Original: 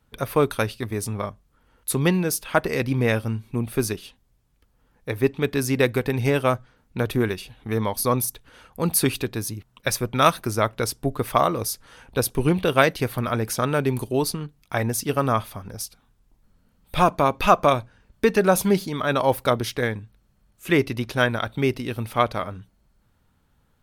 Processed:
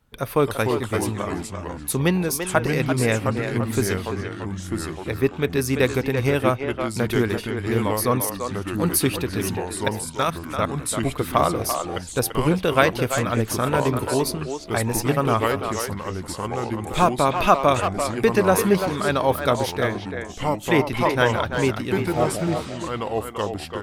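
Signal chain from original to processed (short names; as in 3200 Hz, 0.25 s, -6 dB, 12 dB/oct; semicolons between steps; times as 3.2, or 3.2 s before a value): 9.88–10.97 level quantiser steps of 21 dB; 22.16–22.75 spectral repair 750–8400 Hz before; echoes that change speed 0.23 s, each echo -3 st, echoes 3, each echo -6 dB; speakerphone echo 0.34 s, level -6 dB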